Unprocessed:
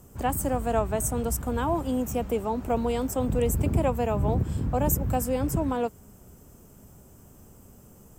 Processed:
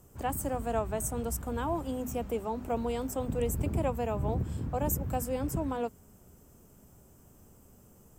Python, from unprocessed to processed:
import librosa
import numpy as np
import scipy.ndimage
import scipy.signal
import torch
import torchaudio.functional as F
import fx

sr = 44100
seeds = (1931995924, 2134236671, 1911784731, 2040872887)

y = fx.hum_notches(x, sr, base_hz=50, count=5)
y = y * librosa.db_to_amplitude(-5.5)